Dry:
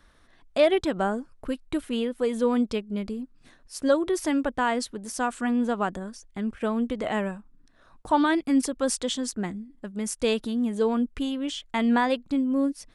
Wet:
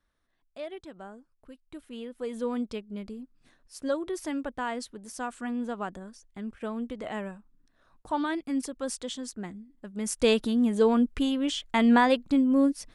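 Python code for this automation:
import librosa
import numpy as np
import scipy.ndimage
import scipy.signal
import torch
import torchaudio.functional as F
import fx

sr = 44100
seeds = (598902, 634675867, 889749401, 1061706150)

y = fx.gain(x, sr, db=fx.line((1.53, -18.5), (2.36, -7.5), (9.77, -7.5), (10.21, 2.0)))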